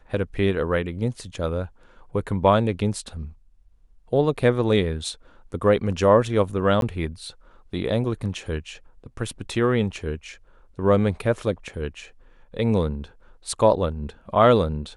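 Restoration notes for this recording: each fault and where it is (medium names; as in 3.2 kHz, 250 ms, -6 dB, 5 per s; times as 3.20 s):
6.81–6.82 s: dropout 12 ms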